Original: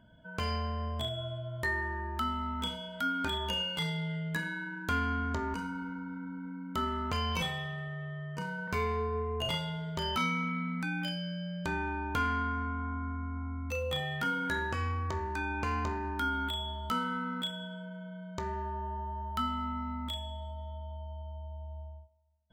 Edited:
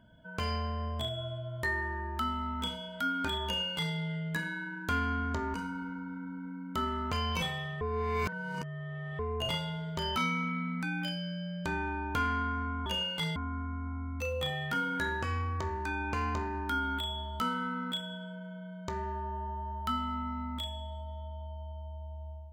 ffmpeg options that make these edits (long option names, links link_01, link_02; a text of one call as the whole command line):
ffmpeg -i in.wav -filter_complex "[0:a]asplit=5[link_01][link_02][link_03][link_04][link_05];[link_01]atrim=end=7.812[link_06];[link_02]atrim=start=7.808:end=9.192,asetpts=PTS-STARTPTS,areverse[link_07];[link_03]atrim=start=9.188:end=12.862[link_08];[link_04]atrim=start=3.448:end=3.952[link_09];[link_05]atrim=start=12.858[link_10];[link_06][link_07]acrossfade=duration=0.004:curve1=hsin:curve2=hsin[link_11];[link_11][link_08]acrossfade=duration=0.004:curve1=hsin:curve2=hsin[link_12];[link_12][link_09]acrossfade=duration=0.004:curve1=hsin:curve2=hsin[link_13];[link_13][link_10]acrossfade=duration=0.004:curve1=hsin:curve2=hsin" out.wav